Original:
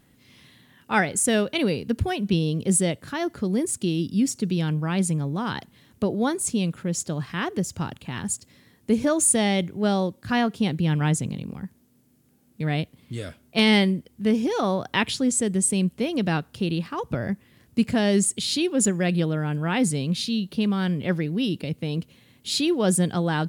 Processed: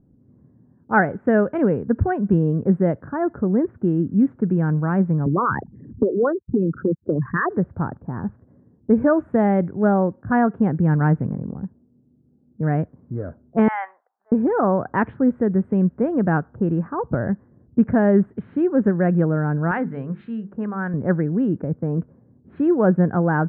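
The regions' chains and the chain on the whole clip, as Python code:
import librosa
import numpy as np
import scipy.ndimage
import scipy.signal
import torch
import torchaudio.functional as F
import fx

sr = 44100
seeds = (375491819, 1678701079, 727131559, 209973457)

y = fx.chain(x, sr, fx.envelope_sharpen(power=3.0),
    fx.lowpass(hz=9300.0, slope=12),
    fx.band_squash(depth_pct=100), at=(5.26, 7.5))
y = fx.chain(y, sr, fx.cheby1_bandpass(low_hz=740.0, high_hz=3100.0, order=4),
    fx.transient(attack_db=-8, sustain_db=5), at=(13.68, 14.32))
y = fx.chain(y, sr, fx.tilt_shelf(db=-8.0, hz=1100.0),
    fx.hum_notches(base_hz=50, count=9), at=(19.71, 20.94))
y = fx.env_lowpass(y, sr, base_hz=350.0, full_db=-17.0)
y = scipy.signal.sosfilt(scipy.signal.ellip(4, 1.0, 70, 1600.0, 'lowpass', fs=sr, output='sos'), y)
y = y * 10.0 ** (5.5 / 20.0)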